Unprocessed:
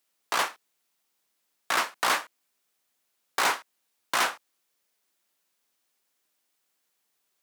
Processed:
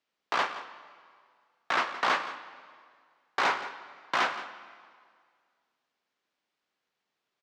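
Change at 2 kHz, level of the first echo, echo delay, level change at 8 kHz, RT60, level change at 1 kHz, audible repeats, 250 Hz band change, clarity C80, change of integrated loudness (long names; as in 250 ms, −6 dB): −1.0 dB, −15.0 dB, 171 ms, −14.0 dB, 2.0 s, −0.5 dB, 1, 0.0 dB, 11.5 dB, −2.5 dB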